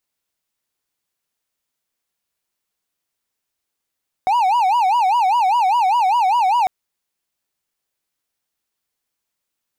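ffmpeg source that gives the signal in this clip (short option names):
-f lavfi -i "aevalsrc='0.282*(1-4*abs(mod((858.5*t-122.5/(2*PI*5)*sin(2*PI*5*t))+0.25,1)-0.5))':d=2.4:s=44100"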